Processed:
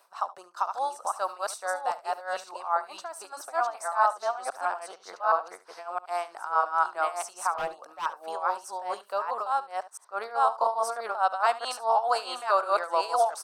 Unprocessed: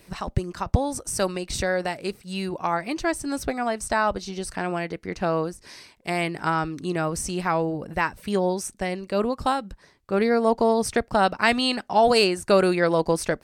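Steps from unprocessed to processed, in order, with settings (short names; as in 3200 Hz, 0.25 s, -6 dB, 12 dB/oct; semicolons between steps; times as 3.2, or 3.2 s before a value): reverse delay 0.665 s, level 0 dB; Chebyshev high-pass 720 Hz, order 3; resonant high shelf 1600 Hz -7.5 dB, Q 3; in parallel at +2 dB: limiter -14.5 dBFS, peak gain reduction 10.5 dB; 7.58–8.06 on the sum: hard clip -17 dBFS, distortion -23 dB; tremolo 4.7 Hz, depth 82%; on a send: echo 72 ms -17 dB; 0.56–1.36 on the sum: three-band squash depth 70%; gain -6.5 dB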